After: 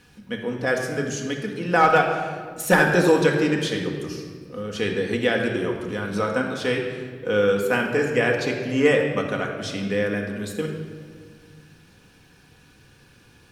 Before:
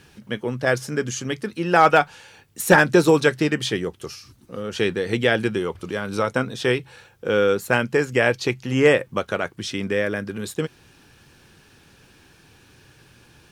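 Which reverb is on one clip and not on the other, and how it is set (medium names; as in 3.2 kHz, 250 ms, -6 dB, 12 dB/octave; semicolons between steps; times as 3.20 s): simulated room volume 2400 m³, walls mixed, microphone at 1.9 m; trim -4.5 dB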